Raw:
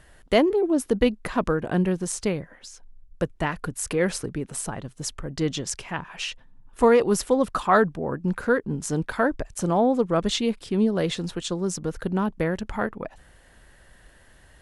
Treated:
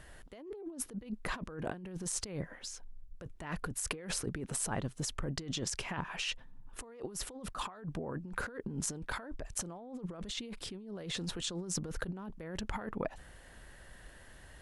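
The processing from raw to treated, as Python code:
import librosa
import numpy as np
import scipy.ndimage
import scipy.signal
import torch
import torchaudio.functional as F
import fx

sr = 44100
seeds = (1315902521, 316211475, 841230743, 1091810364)

y = fx.over_compress(x, sr, threshold_db=-33.0, ratio=-1.0)
y = y * librosa.db_to_amplitude(-8.0)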